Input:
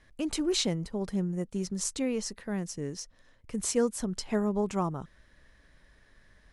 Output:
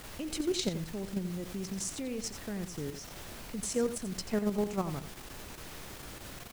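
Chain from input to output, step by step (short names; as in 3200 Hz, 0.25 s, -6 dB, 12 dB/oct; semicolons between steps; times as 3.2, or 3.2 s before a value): added noise pink -44 dBFS; level quantiser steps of 9 dB; dynamic EQ 960 Hz, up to -4 dB, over -52 dBFS, Q 1.7; echo 87 ms -11 dB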